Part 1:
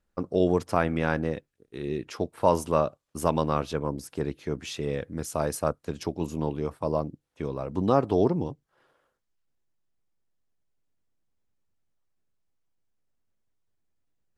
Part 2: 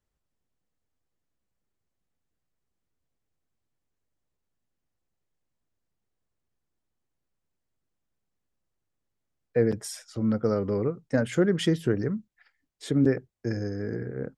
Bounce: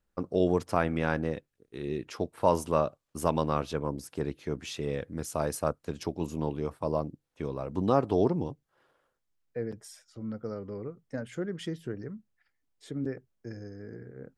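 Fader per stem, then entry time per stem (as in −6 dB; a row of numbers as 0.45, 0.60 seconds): −2.5, −11.5 decibels; 0.00, 0.00 seconds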